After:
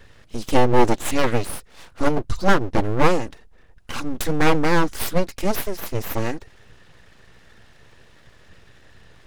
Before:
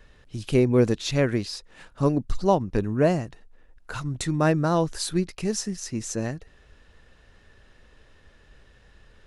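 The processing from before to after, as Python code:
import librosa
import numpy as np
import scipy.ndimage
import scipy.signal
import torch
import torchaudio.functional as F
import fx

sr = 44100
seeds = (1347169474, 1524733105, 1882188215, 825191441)

y = fx.notch_comb(x, sr, f0_hz=280.0)
y = np.abs(y)
y = F.gain(torch.from_numpy(y), 8.0).numpy()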